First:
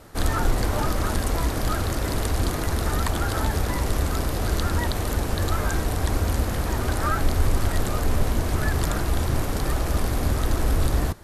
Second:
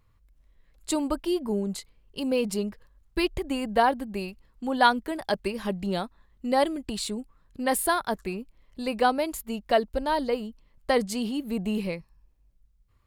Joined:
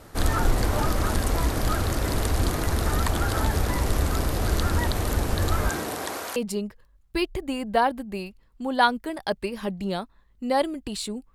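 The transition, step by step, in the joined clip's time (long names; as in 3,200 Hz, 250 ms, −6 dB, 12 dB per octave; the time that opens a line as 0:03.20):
first
0:05.69–0:06.36: high-pass filter 140 Hz → 820 Hz
0:06.36: continue with second from 0:02.38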